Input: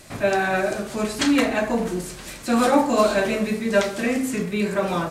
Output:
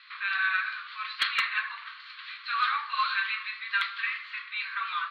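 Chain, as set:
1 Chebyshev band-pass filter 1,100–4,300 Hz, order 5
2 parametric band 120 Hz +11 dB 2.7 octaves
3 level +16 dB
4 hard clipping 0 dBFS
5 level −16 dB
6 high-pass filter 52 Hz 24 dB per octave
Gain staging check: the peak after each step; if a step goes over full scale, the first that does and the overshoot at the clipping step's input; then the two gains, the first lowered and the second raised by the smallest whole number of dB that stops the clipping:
−10.5, −10.5, +5.5, 0.0, −16.0, −15.5 dBFS
step 3, 5.5 dB
step 3 +10 dB, step 5 −10 dB

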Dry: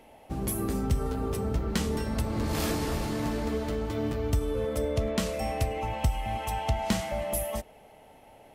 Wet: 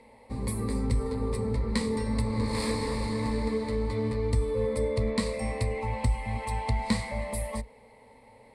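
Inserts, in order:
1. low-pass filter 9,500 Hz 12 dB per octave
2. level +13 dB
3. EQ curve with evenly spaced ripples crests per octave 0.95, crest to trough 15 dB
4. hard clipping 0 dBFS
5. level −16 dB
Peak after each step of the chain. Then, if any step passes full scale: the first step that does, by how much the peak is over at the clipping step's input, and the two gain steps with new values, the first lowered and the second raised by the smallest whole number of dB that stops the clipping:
−15.0, −2.0, +3.0, 0.0, −16.0 dBFS
step 3, 3.0 dB
step 2 +10 dB, step 5 −13 dB

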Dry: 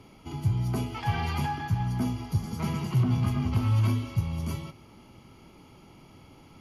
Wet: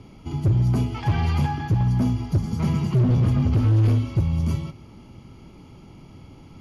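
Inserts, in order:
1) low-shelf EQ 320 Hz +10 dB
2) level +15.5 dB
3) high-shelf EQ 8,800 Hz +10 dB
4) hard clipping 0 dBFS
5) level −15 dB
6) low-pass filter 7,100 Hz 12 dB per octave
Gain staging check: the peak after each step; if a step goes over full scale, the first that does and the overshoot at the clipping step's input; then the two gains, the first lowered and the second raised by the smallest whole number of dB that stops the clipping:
−6.5, +9.0, +9.0, 0.0, −15.0, −15.0 dBFS
step 2, 9.0 dB
step 2 +6.5 dB, step 5 −6 dB

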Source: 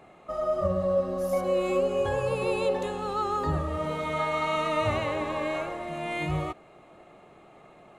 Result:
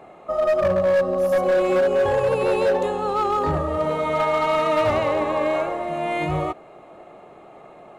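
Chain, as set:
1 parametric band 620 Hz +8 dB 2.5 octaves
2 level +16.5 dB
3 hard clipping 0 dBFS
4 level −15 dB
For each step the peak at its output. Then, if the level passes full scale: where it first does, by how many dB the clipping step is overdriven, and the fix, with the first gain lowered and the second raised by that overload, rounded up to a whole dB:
−8.0, +8.5, 0.0, −15.0 dBFS
step 2, 8.5 dB
step 2 +7.5 dB, step 4 −6 dB

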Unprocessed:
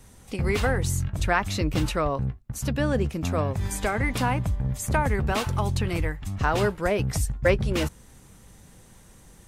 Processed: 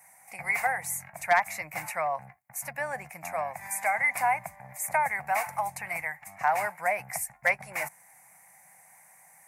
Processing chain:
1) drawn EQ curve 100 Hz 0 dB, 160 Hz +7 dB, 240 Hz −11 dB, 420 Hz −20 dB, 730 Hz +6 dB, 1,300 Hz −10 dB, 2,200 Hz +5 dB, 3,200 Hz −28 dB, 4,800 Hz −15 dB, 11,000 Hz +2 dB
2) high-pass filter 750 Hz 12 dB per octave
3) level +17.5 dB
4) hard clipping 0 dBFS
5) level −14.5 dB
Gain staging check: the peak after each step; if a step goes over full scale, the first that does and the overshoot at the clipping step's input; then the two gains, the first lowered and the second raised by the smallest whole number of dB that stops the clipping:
−10.0, −13.5, +4.0, 0.0, −14.5 dBFS
step 3, 4.0 dB
step 3 +13.5 dB, step 5 −10.5 dB

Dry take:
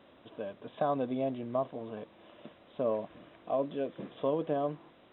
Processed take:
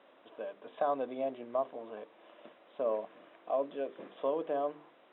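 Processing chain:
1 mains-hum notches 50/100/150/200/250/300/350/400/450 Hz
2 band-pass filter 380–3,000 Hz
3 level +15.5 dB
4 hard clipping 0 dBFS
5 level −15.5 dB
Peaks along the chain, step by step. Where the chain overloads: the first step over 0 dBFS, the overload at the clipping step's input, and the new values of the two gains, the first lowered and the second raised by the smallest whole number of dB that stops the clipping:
−19.0, −20.0, −4.5, −4.5, −20.0 dBFS
no step passes full scale

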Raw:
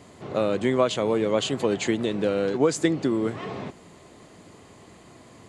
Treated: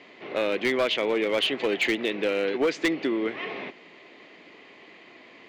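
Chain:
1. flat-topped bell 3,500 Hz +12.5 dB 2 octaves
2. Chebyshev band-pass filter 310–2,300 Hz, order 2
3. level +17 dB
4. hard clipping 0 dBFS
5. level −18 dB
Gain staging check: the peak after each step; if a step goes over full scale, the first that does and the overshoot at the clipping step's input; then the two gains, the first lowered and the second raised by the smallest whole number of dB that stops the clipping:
−3.5, −7.5, +9.5, 0.0, −18.0 dBFS
step 3, 9.5 dB
step 3 +7 dB, step 5 −8 dB

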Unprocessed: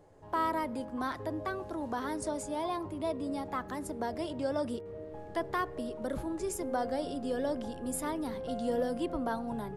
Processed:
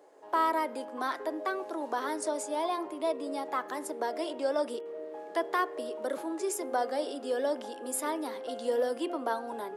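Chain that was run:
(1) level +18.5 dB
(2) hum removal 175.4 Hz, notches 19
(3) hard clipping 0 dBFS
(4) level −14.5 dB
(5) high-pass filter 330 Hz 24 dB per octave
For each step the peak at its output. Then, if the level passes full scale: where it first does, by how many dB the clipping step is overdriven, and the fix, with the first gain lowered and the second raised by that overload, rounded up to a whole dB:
−3.0, −2.5, −2.5, −17.0, −17.5 dBFS
no step passes full scale

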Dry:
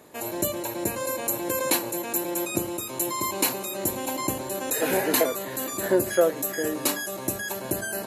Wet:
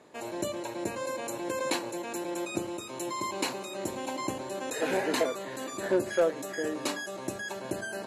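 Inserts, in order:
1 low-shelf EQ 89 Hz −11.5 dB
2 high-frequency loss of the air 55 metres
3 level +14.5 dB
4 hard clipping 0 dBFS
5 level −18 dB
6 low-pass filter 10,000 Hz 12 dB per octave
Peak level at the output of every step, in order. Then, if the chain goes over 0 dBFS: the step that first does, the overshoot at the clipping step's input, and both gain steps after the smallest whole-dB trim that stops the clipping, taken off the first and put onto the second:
−7.5, −9.0, +5.5, 0.0, −18.0, −17.5 dBFS
step 3, 5.5 dB
step 3 +8.5 dB, step 5 −12 dB

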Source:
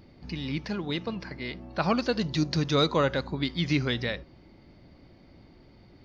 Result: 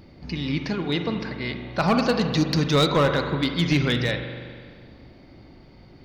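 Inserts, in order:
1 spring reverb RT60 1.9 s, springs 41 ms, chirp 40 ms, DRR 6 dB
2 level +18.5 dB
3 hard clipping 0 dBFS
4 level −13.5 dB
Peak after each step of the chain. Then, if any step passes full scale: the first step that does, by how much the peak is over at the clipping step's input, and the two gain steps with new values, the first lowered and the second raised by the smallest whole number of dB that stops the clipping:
−10.5, +8.0, 0.0, −13.5 dBFS
step 2, 8.0 dB
step 2 +10.5 dB, step 4 −5.5 dB

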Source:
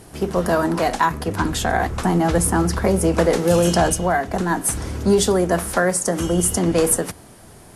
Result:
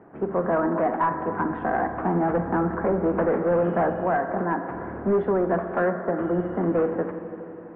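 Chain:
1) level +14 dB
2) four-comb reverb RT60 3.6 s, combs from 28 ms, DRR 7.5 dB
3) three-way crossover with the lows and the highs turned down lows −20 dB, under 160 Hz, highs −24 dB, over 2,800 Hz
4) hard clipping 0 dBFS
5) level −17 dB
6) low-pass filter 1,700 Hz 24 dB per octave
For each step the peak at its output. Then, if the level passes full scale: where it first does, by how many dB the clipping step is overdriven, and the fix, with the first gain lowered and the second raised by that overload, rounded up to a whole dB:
+9.5, +10.5, +9.5, 0.0, −17.0, −15.0 dBFS
step 1, 9.5 dB
step 1 +4 dB, step 5 −7 dB

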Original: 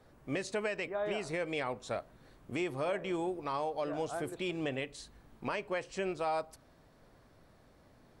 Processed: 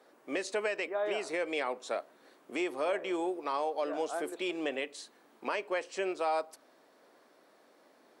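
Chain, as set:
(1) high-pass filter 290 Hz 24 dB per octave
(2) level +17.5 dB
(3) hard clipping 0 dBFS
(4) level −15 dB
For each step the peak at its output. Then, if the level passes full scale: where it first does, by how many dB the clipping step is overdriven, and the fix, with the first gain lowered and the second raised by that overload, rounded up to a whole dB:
−23.0, −5.5, −5.5, −20.5 dBFS
no step passes full scale

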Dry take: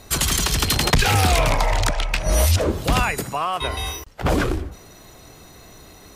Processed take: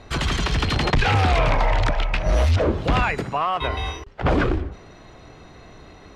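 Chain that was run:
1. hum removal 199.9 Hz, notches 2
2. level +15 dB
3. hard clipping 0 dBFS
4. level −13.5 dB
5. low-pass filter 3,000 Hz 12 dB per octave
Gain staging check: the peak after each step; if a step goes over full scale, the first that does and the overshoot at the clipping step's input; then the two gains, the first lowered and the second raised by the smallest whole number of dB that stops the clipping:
−6.5, +8.5, 0.0, −13.5, −12.5 dBFS
step 2, 8.5 dB
step 2 +6 dB, step 4 −4.5 dB

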